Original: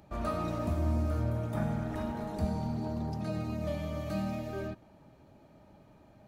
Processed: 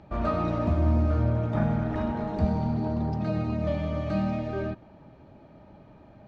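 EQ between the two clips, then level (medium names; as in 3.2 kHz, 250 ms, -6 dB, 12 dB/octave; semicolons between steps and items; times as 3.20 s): distance through air 190 m; +7.0 dB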